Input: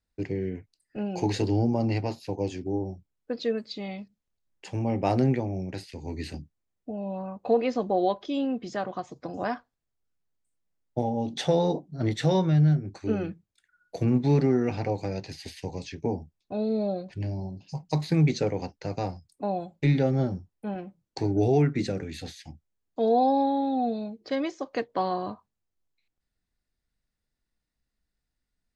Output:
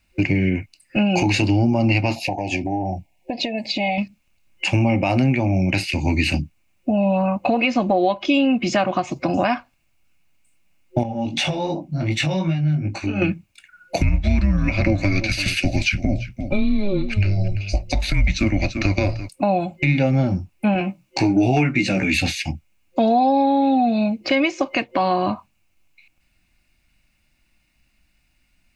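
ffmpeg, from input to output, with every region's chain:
ffmpeg -i in.wav -filter_complex "[0:a]asettb=1/sr,asplit=3[link_01][link_02][link_03];[link_01]atrim=end=2.164[link_04];[link_02]atrim=start=2.16:end=3.98,asetpts=PTS-STARTPTS,afade=type=in:duration=0.004:curve=qsin,afade=type=out:start_time=1.816:duration=0.004:curve=qsin,equalizer=frequency=720:width_type=o:width=0.67:gain=15,acompressor=threshold=-37dB:ratio=5:attack=3.2:release=140:knee=1:detection=peak,asuperstop=centerf=1300:order=12:qfactor=1.9[link_05];[link_03]atrim=start=3.976[link_06];[link_04][link_05]acrossfade=duration=0.004:curve1=hsin:curve2=qsin[link_07];[link_07][link_06]acrossfade=duration=0.004:curve1=qsin:curve2=hsin,asettb=1/sr,asplit=3[link_08][link_09][link_10];[link_08]atrim=end=11.034[link_11];[link_09]atrim=start=11.03:end=13.22,asetpts=PTS-STARTPTS,afade=type=in:duration=0.004:curve=qsin,afade=type=out:start_time=2.186:duration=0.004:curve=qsin,acompressor=threshold=-35dB:ratio=4:attack=3.2:release=140:knee=1:detection=peak,flanger=delay=17.5:depth=3.3:speed=2.6[link_12];[link_10]atrim=start=13.216[link_13];[link_11][link_12]acrossfade=duration=0.004:curve1=hsin:curve2=qsin[link_14];[link_14][link_13]acrossfade=duration=0.004:curve1=qsin:curve2=hsin,asettb=1/sr,asplit=3[link_15][link_16][link_17];[link_15]atrim=end=14.014[link_18];[link_16]atrim=start=14.01:end=19.29,asetpts=PTS-STARTPTS,afade=type=in:duration=0.004:curve=qsin,afade=type=out:start_time=5.276:duration=0.004:curve=qsin,aecho=1:1:341:0.141,atrim=end_sample=232848,afreqshift=-200[link_19];[link_17]atrim=start=19.286[link_20];[link_18][link_19]acrossfade=duration=0.004:curve1=hsin:curve2=qsin[link_21];[link_21][link_20]acrossfade=duration=0.004:curve1=qsin:curve2=hsin,asettb=1/sr,asplit=3[link_22][link_23][link_24];[link_22]atrim=end=20.794[link_25];[link_23]atrim=start=20.79:end=22.14,asetpts=PTS-STARTPTS,afade=type=in:duration=0.004:curve=qsin,afade=type=out:start_time=1.346:duration=0.004:curve=qsin,lowshelf=frequency=120:gain=-8.5,asoftclip=type=hard:threshold=-15.5dB,asplit=2[link_26][link_27];[link_27]adelay=16,volume=-3dB[link_28];[link_26][link_28]amix=inputs=2:normalize=0,atrim=end_sample=59535[link_29];[link_24]atrim=start=22.136[link_30];[link_25][link_29]acrossfade=duration=0.004:curve1=hsin:curve2=qsin[link_31];[link_31][link_30]acrossfade=duration=0.004:curve1=qsin:curve2=hsin,superequalizer=7b=0.251:12b=3.98,acompressor=threshold=-32dB:ratio=6,alimiter=level_in=24.5dB:limit=-1dB:release=50:level=0:latency=1,volume=-7dB" out.wav

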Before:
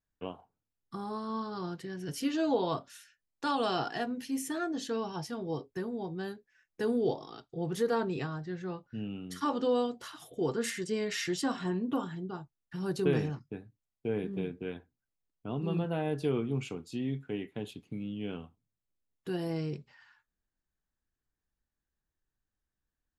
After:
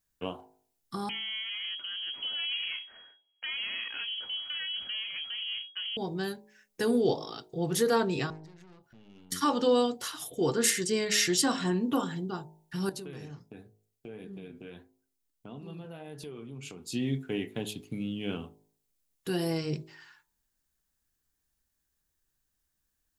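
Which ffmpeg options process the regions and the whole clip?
ffmpeg -i in.wav -filter_complex "[0:a]asettb=1/sr,asplit=3[link_01][link_02][link_03];[link_01]atrim=end=1.094[link_04];[link_02]atrim=start=1.09:end=5.97,asetpts=PTS-STARTPTS,afade=type=in:duration=0.004:curve=qsin,afade=type=out:start_time=4.876:duration=0.004:curve=qsin,aeval=exprs='if(lt(val(0),0),0.251*val(0),val(0))':channel_layout=same,acompressor=threshold=-41dB:ratio=3:attack=3.2:release=140:knee=1:detection=peak,lowpass=frequency=2800:width_type=q:width=0.5098,lowpass=frequency=2800:width_type=q:width=0.6013,lowpass=frequency=2800:width_type=q:width=0.9,lowpass=frequency=2800:width_type=q:width=2.563,afreqshift=-3300[link_05];[link_03]atrim=start=5.966[link_06];[link_04][link_05]acrossfade=duration=0.004:curve1=hsin:curve2=qsin[link_07];[link_07][link_06]acrossfade=duration=0.004:curve1=qsin:curve2=hsin,asettb=1/sr,asplit=3[link_08][link_09][link_10];[link_08]atrim=end=8.304[link_11];[link_09]atrim=start=8.3:end=9.32,asetpts=PTS-STARTPTS,afade=type=in:duration=0.004:curve=qsin,afade=type=out:start_time=1.016:duration=0.004:curve=qsin,acompressor=threshold=-50dB:ratio=6:attack=3.2:release=140:knee=1:detection=peak,aeval=exprs='(tanh(562*val(0)+0.7)-tanh(0.7))/562':channel_layout=same[link_12];[link_10]atrim=start=9.316[link_13];[link_11][link_12]acrossfade=duration=0.004:curve1=hsin:curve2=qsin[link_14];[link_14][link_13]acrossfade=duration=0.004:curve1=qsin:curve2=hsin,asettb=1/sr,asplit=3[link_15][link_16][link_17];[link_15]atrim=end=12.894[link_18];[link_16]atrim=start=12.89:end=16.88,asetpts=PTS-STARTPTS,afade=type=in:duration=0.004:curve=qsin,afade=type=out:start_time=3.986:duration=0.004:curve=qsin,flanger=delay=3.8:depth=4.4:regen=80:speed=1.5:shape=triangular,acompressor=threshold=-45dB:ratio=4:attack=3.2:release=140:knee=1:detection=peak[link_19];[link_17]atrim=start=16.876[link_20];[link_18][link_19]acrossfade=duration=0.004:curve1=hsin:curve2=qsin[link_21];[link_21][link_20]acrossfade=duration=0.004:curve1=qsin:curve2=hsin,highshelf=frequency=4100:gain=12,bandreject=frequency=52.7:width_type=h:width=4,bandreject=frequency=105.4:width_type=h:width=4,bandreject=frequency=158.1:width_type=h:width=4,bandreject=frequency=210.8:width_type=h:width=4,bandreject=frequency=263.5:width_type=h:width=4,bandreject=frequency=316.2:width_type=h:width=4,bandreject=frequency=368.9:width_type=h:width=4,bandreject=frequency=421.6:width_type=h:width=4,bandreject=frequency=474.3:width_type=h:width=4,bandreject=frequency=527:width_type=h:width=4,bandreject=frequency=579.7:width_type=h:width=4,bandreject=frequency=632.4:width_type=h:width=4,bandreject=frequency=685.1:width_type=h:width=4,bandreject=frequency=737.8:width_type=h:width=4,bandreject=frequency=790.5:width_type=h:width=4,bandreject=frequency=843.2:width_type=h:width=4,bandreject=frequency=895.9:width_type=h:width=4,bandreject=frequency=948.6:width_type=h:width=4,bandreject=frequency=1001.3:width_type=h:width=4,volume=4dB" out.wav

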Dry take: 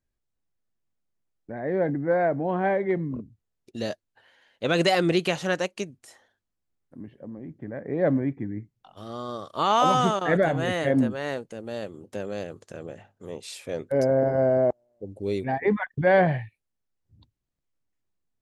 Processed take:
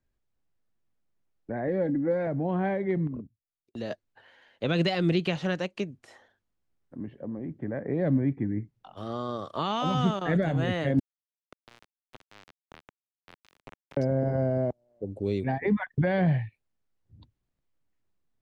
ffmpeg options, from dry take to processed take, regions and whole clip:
ffmpeg -i in.wav -filter_complex "[0:a]asettb=1/sr,asplit=3[link_01][link_02][link_03];[link_01]atrim=end=1.674[link_04];[link_02]atrim=start=1.67:end=2.27,asetpts=PTS-STARTPTS,afade=type=in:duration=0.004:curve=qsin,afade=type=out:start_time=0.596:duration=0.004:curve=qsin,equalizer=frequency=490:width=6.3:gain=6,aecho=1:1:3.6:0.59,atrim=end_sample=26460[link_05];[link_03]atrim=start=2.266[link_06];[link_04][link_05]acrossfade=duration=0.004:curve1=hsin:curve2=qsin[link_07];[link_07][link_06]acrossfade=duration=0.004:curve1=qsin:curve2=hsin,asettb=1/sr,asplit=3[link_08][link_09][link_10];[link_08]atrim=end=3.074[link_11];[link_09]atrim=start=3.07:end=3.91,asetpts=PTS-STARTPTS,afade=type=in:duration=0.004:curve=qsin,afade=type=out:start_time=0.836:duration=0.004:curve=qsin,agate=range=-22dB:threshold=-46dB:ratio=16:release=100:detection=peak,acompressor=threshold=-47dB:ratio=1.5:attack=3.2:release=140:knee=1:detection=peak[link_12];[link_10]atrim=start=3.906[link_13];[link_11][link_12]acrossfade=duration=0.004:curve1=hsin:curve2=qsin[link_14];[link_14][link_13]acrossfade=duration=0.004:curve1=qsin:curve2=hsin,asettb=1/sr,asplit=3[link_15][link_16][link_17];[link_15]atrim=end=10.994[link_18];[link_16]atrim=start=10.99:end=13.97,asetpts=PTS-STARTPTS,afade=type=in:duration=0.004:curve=qsin,afade=type=out:start_time=2.976:duration=0.004:curve=qsin,acompressor=threshold=-39dB:ratio=12:attack=3.2:release=140:knee=1:detection=peak,aeval=exprs='val(0)*gte(abs(val(0)),0.02)':channel_layout=same[link_19];[link_17]atrim=start=13.966[link_20];[link_18][link_19]acrossfade=duration=0.004:curve1=hsin:curve2=qsin[link_21];[link_21][link_20]acrossfade=duration=0.004:curve1=qsin:curve2=hsin,acrossover=split=4500[link_22][link_23];[link_23]acompressor=threshold=-56dB:ratio=4:attack=1:release=60[link_24];[link_22][link_24]amix=inputs=2:normalize=0,aemphasis=mode=reproduction:type=50kf,acrossover=split=240|3000[link_25][link_26][link_27];[link_26]acompressor=threshold=-34dB:ratio=4[link_28];[link_25][link_28][link_27]amix=inputs=3:normalize=0,volume=3.5dB" out.wav

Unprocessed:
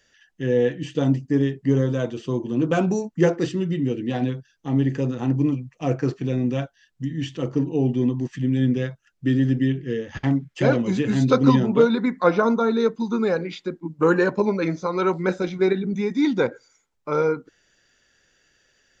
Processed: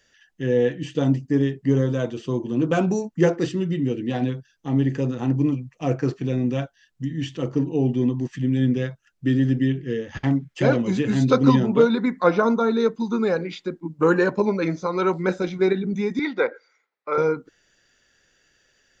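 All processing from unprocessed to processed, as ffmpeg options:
ffmpeg -i in.wav -filter_complex "[0:a]asettb=1/sr,asplit=3[link_01][link_02][link_03];[link_01]atrim=end=16.194[link_04];[link_02]atrim=start=16.19:end=17.18,asetpts=PTS-STARTPTS,afade=type=in:duration=0.004:curve=qsin,afade=type=out:start_time=0.986:duration=0.004:curve=qsin,highpass=440,equalizer=frequency=470:width_type=q:width=4:gain=3,equalizer=frequency=1300:width_type=q:width=4:gain=3,equalizer=frequency=2000:width_type=q:width=4:gain=7,equalizer=frequency=3100:width_type=q:width=4:gain=-6,lowpass=frequency=4300:width=0.5412,lowpass=frequency=4300:width=1.3066,bandreject=frequency=920:width=20[link_05];[link_03]atrim=start=17.176[link_06];[link_04][link_05]acrossfade=duration=0.004:curve1=hsin:curve2=qsin[link_07];[link_07][link_06]acrossfade=duration=0.004:curve1=qsin:curve2=hsin" out.wav

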